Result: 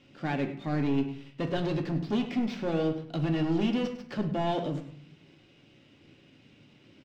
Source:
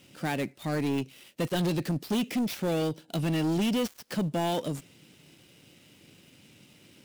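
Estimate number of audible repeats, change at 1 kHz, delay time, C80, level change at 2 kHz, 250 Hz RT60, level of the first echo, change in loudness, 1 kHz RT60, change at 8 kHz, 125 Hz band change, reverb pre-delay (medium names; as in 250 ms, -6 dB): 1, -0.5 dB, 101 ms, 11.5 dB, -2.0 dB, 0.80 s, -13.5 dB, -0.5 dB, 0.60 s, under -15 dB, -0.5 dB, 3 ms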